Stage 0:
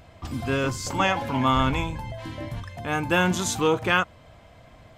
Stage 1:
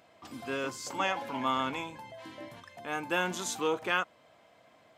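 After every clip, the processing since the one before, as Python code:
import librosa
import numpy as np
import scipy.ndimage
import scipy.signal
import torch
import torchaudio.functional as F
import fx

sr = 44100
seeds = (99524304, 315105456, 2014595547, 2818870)

y = scipy.signal.sosfilt(scipy.signal.butter(2, 280.0, 'highpass', fs=sr, output='sos'), x)
y = F.gain(torch.from_numpy(y), -7.5).numpy()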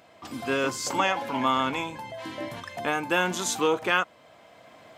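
y = fx.recorder_agc(x, sr, target_db=-19.0, rise_db_per_s=5.9, max_gain_db=30)
y = F.gain(torch.from_numpy(y), 5.5).numpy()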